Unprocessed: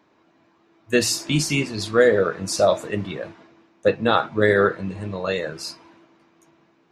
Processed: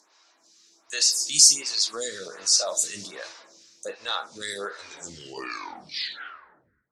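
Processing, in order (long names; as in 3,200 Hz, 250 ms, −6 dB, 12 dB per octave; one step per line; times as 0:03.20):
turntable brake at the end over 2.20 s
meter weighting curve ITU-R 468
downward compressor 3 to 1, threshold −26 dBFS, peak gain reduction 13.5 dB
transient designer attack −7 dB, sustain +1 dB
high shelf with overshoot 3,900 Hz +12.5 dB, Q 1.5
dense smooth reverb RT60 2 s, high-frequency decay 0.3×, DRR 17.5 dB
phaser with staggered stages 1.3 Hz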